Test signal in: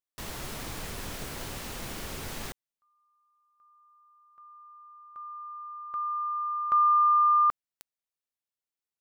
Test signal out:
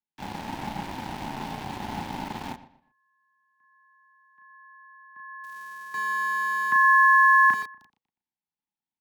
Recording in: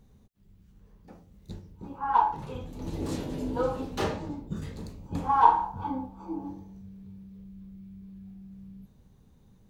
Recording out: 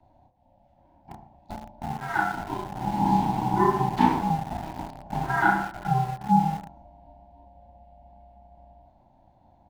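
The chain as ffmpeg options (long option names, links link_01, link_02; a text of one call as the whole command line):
ffmpeg -i in.wav -filter_complex "[0:a]asuperstop=centerf=670:order=20:qfactor=7.2,aeval=exprs='0.596*(cos(1*acos(clip(val(0)/0.596,-1,1)))-cos(1*PI/2))+0.00841*(cos(5*acos(clip(val(0)/0.596,-1,1)))-cos(5*PI/2))':channel_layout=same,asplit=2[link_01][link_02];[link_02]adelay=34,volume=-3.5dB[link_03];[link_01][link_03]amix=inputs=2:normalize=0,asplit=2[link_04][link_05];[link_05]adelay=120,lowpass=frequency=4400:poles=1,volume=-12dB,asplit=2[link_06][link_07];[link_07]adelay=120,lowpass=frequency=4400:poles=1,volume=0.3,asplit=2[link_08][link_09];[link_09]adelay=120,lowpass=frequency=4400:poles=1,volume=0.3[link_10];[link_04][link_06][link_08][link_10]amix=inputs=4:normalize=0,acrossover=split=280|1200[link_11][link_12][link_13];[link_11]acompressor=threshold=-43dB:ratio=6:attack=88:release=37:knee=1:detection=rms[link_14];[link_14][link_12][link_13]amix=inputs=3:normalize=0,firequalizer=gain_entry='entry(160,0);entry(340,9);entry(750,-19);entry(1200,-9)':delay=0.05:min_phase=1,afreqshift=190,acrossover=split=420 4400:gain=0.0794 1 0.0891[link_15][link_16][link_17];[link_15][link_16][link_17]amix=inputs=3:normalize=0,aeval=exprs='val(0)*sin(2*PI*320*n/s)':channel_layout=same,asplit=2[link_18][link_19];[link_19]aeval=exprs='val(0)*gte(abs(val(0)),0.00794)':channel_layout=same,volume=-3.5dB[link_20];[link_18][link_20]amix=inputs=2:normalize=0,volume=7dB" out.wav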